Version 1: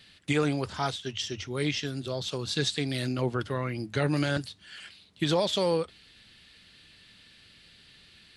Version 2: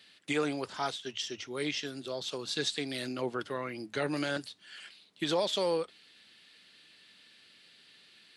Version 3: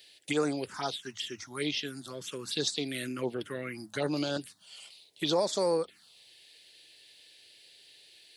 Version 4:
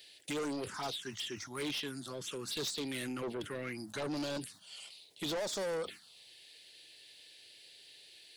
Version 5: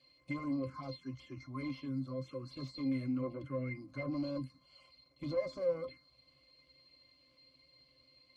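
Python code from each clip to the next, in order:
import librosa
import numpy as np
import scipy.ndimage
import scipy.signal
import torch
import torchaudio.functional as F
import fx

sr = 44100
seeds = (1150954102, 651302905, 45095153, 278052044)

y1 = scipy.signal.sosfilt(scipy.signal.butter(2, 260.0, 'highpass', fs=sr, output='sos'), x)
y1 = y1 * librosa.db_to_amplitude(-3.0)
y2 = fx.high_shelf(y1, sr, hz=8400.0, db=11.0)
y2 = fx.env_phaser(y2, sr, low_hz=190.0, high_hz=3100.0, full_db=-26.5)
y2 = y2 * librosa.db_to_amplitude(2.5)
y3 = 10.0 ** (-33.5 / 20.0) * np.tanh(y2 / 10.0 ** (-33.5 / 20.0))
y3 = fx.sustainer(y3, sr, db_per_s=140.0)
y4 = fx.spec_quant(y3, sr, step_db=15)
y4 = fx.dmg_crackle(y4, sr, seeds[0], per_s=330.0, level_db=-51.0)
y4 = fx.octave_resonator(y4, sr, note='C', decay_s=0.12)
y4 = y4 * librosa.db_to_amplitude(9.0)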